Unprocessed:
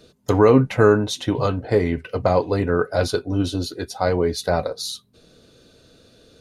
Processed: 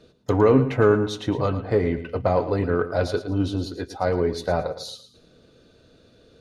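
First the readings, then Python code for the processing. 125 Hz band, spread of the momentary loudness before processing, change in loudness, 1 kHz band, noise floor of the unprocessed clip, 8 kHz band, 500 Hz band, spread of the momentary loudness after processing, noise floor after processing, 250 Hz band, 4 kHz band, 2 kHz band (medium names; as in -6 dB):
-2.0 dB, 12 LU, -2.5 dB, -3.0 dB, -55 dBFS, -9.5 dB, -2.5 dB, 12 LU, -56 dBFS, -2.5 dB, -6.5 dB, -3.5 dB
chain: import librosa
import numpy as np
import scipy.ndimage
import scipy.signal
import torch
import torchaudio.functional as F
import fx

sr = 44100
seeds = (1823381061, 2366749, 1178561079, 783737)

p1 = fx.lowpass(x, sr, hz=2800.0, slope=6)
p2 = 10.0 ** (-13.0 / 20.0) * np.tanh(p1 / 10.0 ** (-13.0 / 20.0))
p3 = p1 + (p2 * librosa.db_to_amplitude(-9.0))
p4 = fx.echo_feedback(p3, sr, ms=112, feedback_pct=31, wet_db=-12.0)
y = p4 * librosa.db_to_amplitude(-4.5)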